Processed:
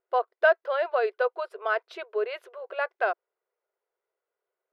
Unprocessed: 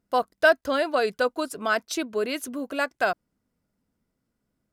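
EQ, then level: brick-wall FIR high-pass 360 Hz; air absorption 430 m; 0.0 dB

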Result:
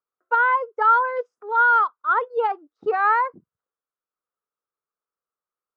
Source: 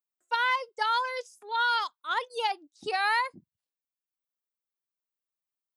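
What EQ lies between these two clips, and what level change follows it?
synth low-pass 1300 Hz, resonance Q 4.9; bell 450 Hz +11.5 dB 0.64 oct; 0.0 dB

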